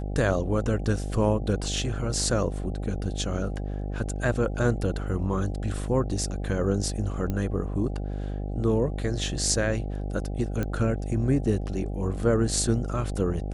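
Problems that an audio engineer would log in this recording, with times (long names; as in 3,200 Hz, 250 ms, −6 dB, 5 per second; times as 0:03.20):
mains buzz 50 Hz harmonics 16 −31 dBFS
0:07.30: click −17 dBFS
0:10.63: click −16 dBFS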